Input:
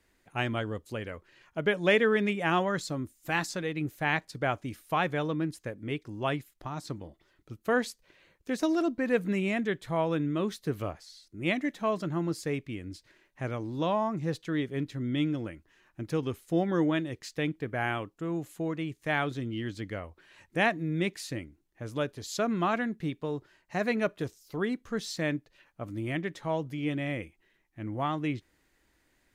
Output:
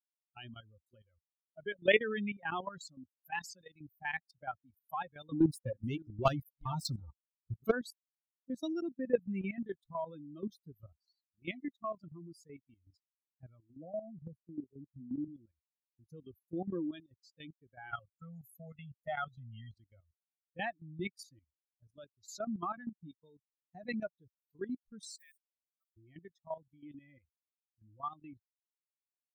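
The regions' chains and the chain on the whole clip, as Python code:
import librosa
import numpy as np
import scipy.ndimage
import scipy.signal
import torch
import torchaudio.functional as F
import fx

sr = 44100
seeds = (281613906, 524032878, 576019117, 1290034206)

y = fx.chain(x, sr, fx.reverse_delay(ms=391, wet_db=-12.5),
    fx.leveller(passes=3), at=(5.32, 7.72))
y = fx.chain(y, sr, fx.brickwall_bandstop(low_hz=800.0, high_hz=9200.0),
    fx.band_squash(depth_pct=40), at=(13.74, 15.28))
y = fx.chain(y, sr, fx.comb(ms=1.5, depth=0.91),
    fx.band_squash(depth_pct=40), at=(17.91, 19.74))
y = fx.chain(y, sr, fx.block_float(bits=5),
    fx.highpass(hz=1200.0, slope=12),
    fx.peak_eq(hz=8700.0, db=9.5, octaves=0.44), at=(25.0, 25.97))
y = fx.bin_expand(y, sr, power=3.0)
y = fx.level_steps(y, sr, step_db=13)
y = y * 10.0 ** (3.5 / 20.0)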